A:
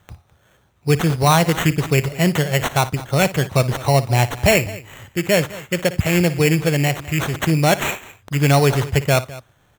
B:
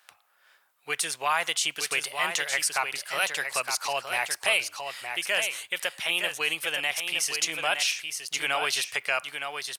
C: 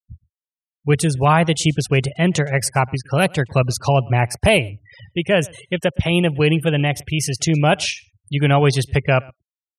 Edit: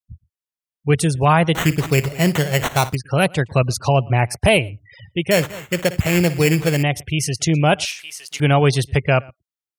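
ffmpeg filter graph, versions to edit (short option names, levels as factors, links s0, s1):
-filter_complex "[0:a]asplit=2[s0][s1];[2:a]asplit=4[s2][s3][s4][s5];[s2]atrim=end=1.552[s6];[s0]atrim=start=1.548:end=2.952[s7];[s3]atrim=start=2.948:end=5.312[s8];[s1]atrim=start=5.308:end=6.832[s9];[s4]atrim=start=6.828:end=7.852[s10];[1:a]atrim=start=7.848:end=8.402[s11];[s5]atrim=start=8.398[s12];[s6][s7]acrossfade=d=0.004:c1=hsin:c2=hsin[s13];[s13][s8]acrossfade=d=0.004:c1=hsin:c2=hsin[s14];[s14][s9]acrossfade=d=0.004:c1=hsin:c2=hsin[s15];[s15][s10]acrossfade=d=0.004:c1=hsin:c2=hsin[s16];[s16][s11]acrossfade=d=0.004:c1=hsin:c2=hsin[s17];[s17][s12]acrossfade=d=0.004:c1=hsin:c2=hsin"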